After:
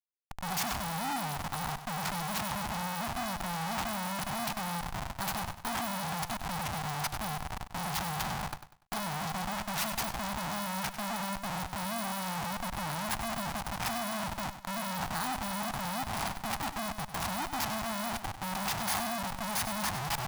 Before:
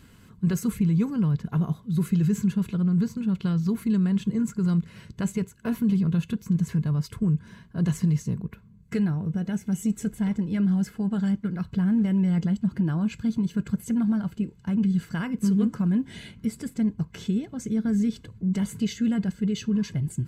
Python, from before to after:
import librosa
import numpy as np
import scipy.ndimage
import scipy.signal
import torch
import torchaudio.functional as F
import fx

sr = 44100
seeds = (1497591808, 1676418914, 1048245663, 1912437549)

p1 = fx.bit_reversed(x, sr, seeds[0], block=16)
p2 = fx.schmitt(p1, sr, flips_db=-40.5)
p3 = fx.low_shelf_res(p2, sr, hz=610.0, db=-8.5, q=3.0)
p4 = p3 + fx.echo_feedback(p3, sr, ms=97, feedback_pct=33, wet_db=-11.0, dry=0)
y = p4 * 10.0 ** (-5.0 / 20.0)